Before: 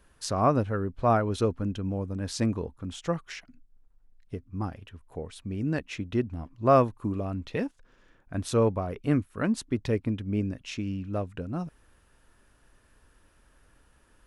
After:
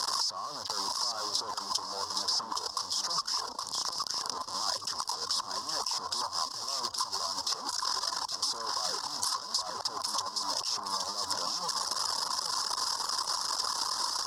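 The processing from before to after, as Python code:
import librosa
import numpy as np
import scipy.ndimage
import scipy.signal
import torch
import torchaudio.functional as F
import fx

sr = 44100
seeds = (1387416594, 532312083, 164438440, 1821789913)

p1 = fx.delta_mod(x, sr, bps=64000, step_db=-27.5)
p2 = fx.dereverb_blind(p1, sr, rt60_s=0.68)
p3 = fx.fuzz(p2, sr, gain_db=35.0, gate_db=-43.0)
p4 = fx.over_compress(p3, sr, threshold_db=-20.0, ratio=-0.5)
p5 = fx.double_bandpass(p4, sr, hz=2300.0, octaves=2.3)
p6 = fx.high_shelf(p5, sr, hz=3900.0, db=9.5)
p7 = p6 + fx.echo_feedback(p6, sr, ms=818, feedback_pct=38, wet_db=-6.5, dry=0)
p8 = fx.band_squash(p7, sr, depth_pct=100)
y = p8 * librosa.db_to_amplitude(-3.5)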